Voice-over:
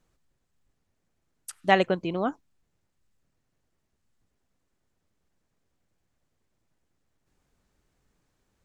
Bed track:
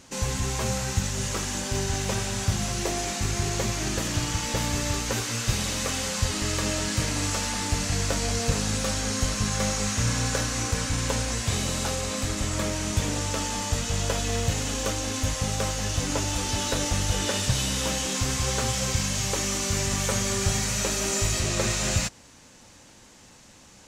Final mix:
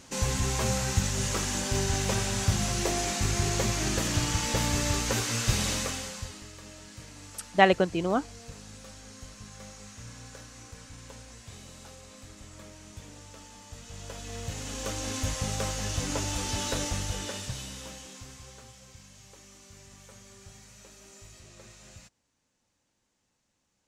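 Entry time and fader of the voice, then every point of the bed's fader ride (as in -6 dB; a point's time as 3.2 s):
5.90 s, +1.0 dB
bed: 5.73 s -0.5 dB
6.52 s -20 dB
13.64 s -20 dB
15.09 s -4 dB
16.77 s -4 dB
18.81 s -25.5 dB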